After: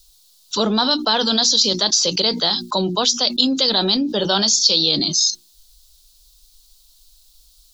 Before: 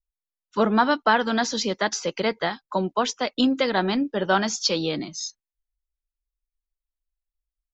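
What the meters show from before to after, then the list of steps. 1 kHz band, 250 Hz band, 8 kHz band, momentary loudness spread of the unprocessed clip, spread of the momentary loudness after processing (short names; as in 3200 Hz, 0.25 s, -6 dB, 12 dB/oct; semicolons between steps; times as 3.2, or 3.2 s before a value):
-1.0 dB, +2.5 dB, n/a, 9 LU, 6 LU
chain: resonant high shelf 2900 Hz +12 dB, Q 3; notches 60/120/180/240/300/360 Hz; fast leveller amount 70%; gain -11 dB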